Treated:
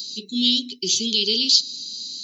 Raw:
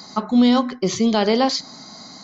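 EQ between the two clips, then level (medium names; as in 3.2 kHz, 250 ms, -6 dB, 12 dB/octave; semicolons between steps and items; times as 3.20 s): Chebyshev band-stop 430–2600 Hz, order 5; tilt EQ +3.5 dB/octave; peaking EQ 3.5 kHz +7.5 dB 1.1 oct; -3.0 dB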